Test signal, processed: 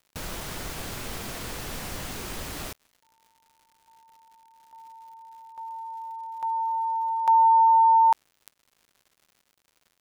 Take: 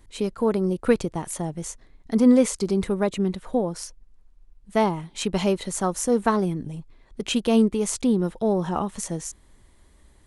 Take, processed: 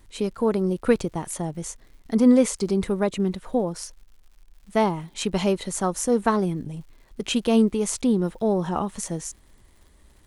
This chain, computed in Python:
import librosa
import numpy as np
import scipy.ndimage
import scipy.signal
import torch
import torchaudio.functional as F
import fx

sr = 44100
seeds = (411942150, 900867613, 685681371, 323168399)

y = fx.dmg_crackle(x, sr, seeds[0], per_s=180.0, level_db=-48.0)